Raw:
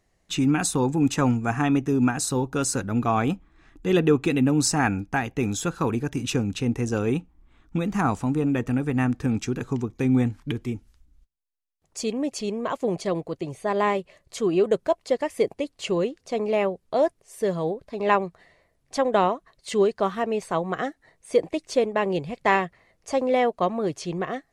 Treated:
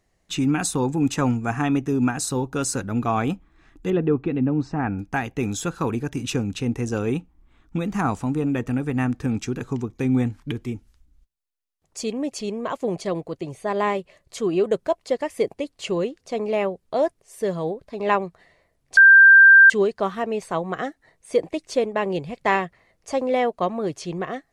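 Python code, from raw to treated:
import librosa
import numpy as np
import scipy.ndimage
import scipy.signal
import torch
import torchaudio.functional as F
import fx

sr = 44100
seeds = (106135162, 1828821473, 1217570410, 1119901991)

y = fx.spacing_loss(x, sr, db_at_10k=44, at=(3.9, 4.99))
y = fx.edit(y, sr, fx.bleep(start_s=18.97, length_s=0.73, hz=1580.0, db=-6.5), tone=tone)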